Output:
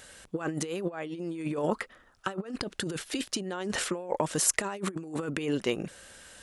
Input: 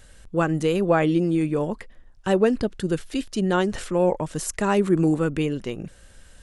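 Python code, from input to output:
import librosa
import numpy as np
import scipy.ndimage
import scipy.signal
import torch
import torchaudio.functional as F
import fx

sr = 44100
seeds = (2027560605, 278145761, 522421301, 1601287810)

y = fx.peak_eq(x, sr, hz=1300.0, db=12.0, octaves=0.25, at=(1.67, 2.55))
y = fx.over_compress(y, sr, threshold_db=-26.0, ratio=-0.5)
y = fx.highpass(y, sr, hz=430.0, slope=6)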